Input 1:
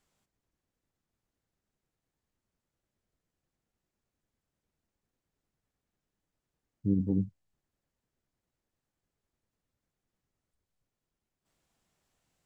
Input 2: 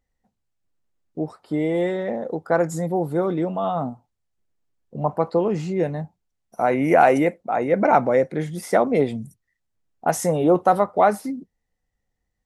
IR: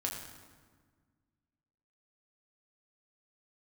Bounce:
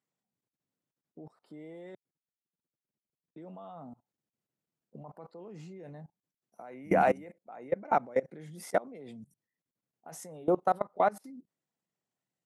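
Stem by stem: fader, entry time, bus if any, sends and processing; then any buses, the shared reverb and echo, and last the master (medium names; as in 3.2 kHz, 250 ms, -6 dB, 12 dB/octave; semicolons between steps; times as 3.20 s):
-2.5 dB, 0.00 s, no send, resonances exaggerated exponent 1.5
-7.5 dB, 0.00 s, muted 1.95–3.36 s, no send, none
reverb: none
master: high-pass 130 Hz 24 dB/octave; level held to a coarse grid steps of 23 dB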